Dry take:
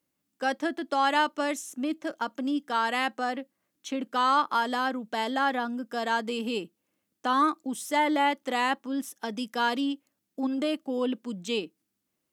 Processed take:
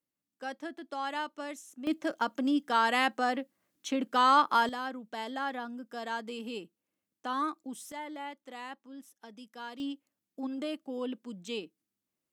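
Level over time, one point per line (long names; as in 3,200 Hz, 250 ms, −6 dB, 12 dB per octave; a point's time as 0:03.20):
−11 dB
from 0:01.87 +0.5 dB
from 0:04.69 −8.5 dB
from 0:07.92 −16.5 dB
from 0:09.80 −7.5 dB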